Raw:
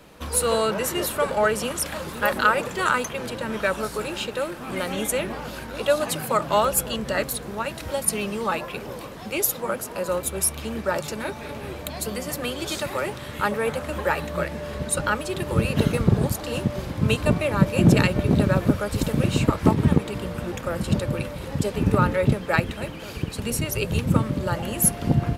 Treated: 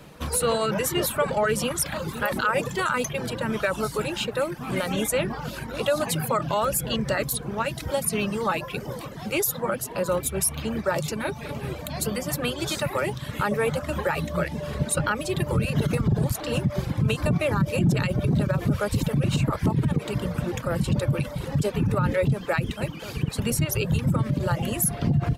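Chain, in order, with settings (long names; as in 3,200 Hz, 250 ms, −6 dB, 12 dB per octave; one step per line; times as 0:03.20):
parametric band 140 Hz +8.5 dB 0.69 octaves
brickwall limiter −15 dBFS, peak gain reduction 14 dB
reverb reduction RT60 0.68 s
level +1.5 dB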